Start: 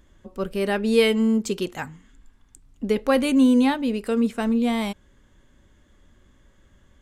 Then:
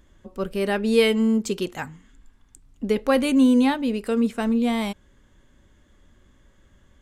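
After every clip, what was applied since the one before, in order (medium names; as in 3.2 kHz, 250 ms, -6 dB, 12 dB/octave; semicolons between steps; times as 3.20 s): no audible change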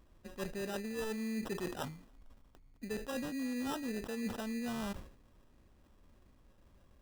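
reverse; compression 16:1, threshold -27 dBFS, peak gain reduction 15.5 dB; reverse; sample-rate reducer 2.2 kHz, jitter 0%; decay stretcher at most 97 dB/s; trim -8 dB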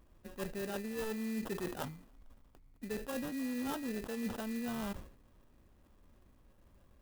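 sampling jitter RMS 0.04 ms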